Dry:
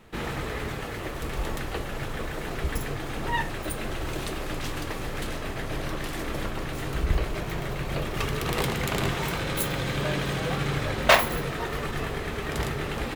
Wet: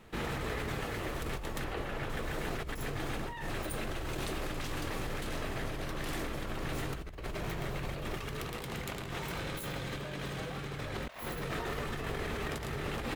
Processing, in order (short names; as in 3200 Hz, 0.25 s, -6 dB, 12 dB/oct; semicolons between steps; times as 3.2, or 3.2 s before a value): 1.64–2.1 tone controls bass -3 dB, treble -8 dB; negative-ratio compressor -32 dBFS, ratio -1; gain -5.5 dB